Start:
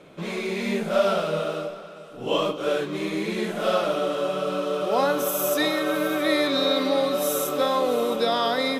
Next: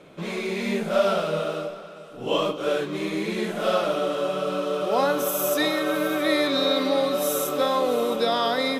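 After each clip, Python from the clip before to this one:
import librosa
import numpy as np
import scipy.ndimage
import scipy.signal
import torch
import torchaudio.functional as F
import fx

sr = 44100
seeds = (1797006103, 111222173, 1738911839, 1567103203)

y = x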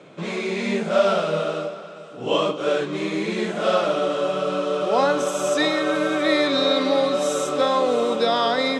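y = scipy.signal.sosfilt(scipy.signal.ellip(3, 1.0, 40, [110.0, 8000.0], 'bandpass', fs=sr, output='sos'), x)
y = F.gain(torch.from_numpy(y), 3.0).numpy()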